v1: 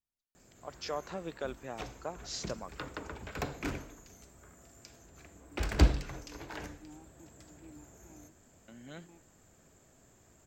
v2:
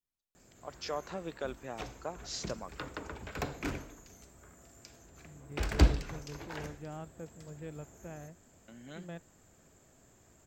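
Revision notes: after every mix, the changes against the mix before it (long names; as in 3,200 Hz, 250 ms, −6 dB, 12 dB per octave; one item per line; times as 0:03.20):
second voice: remove formant filter u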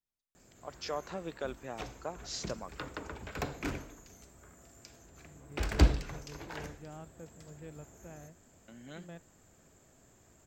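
second voice −4.0 dB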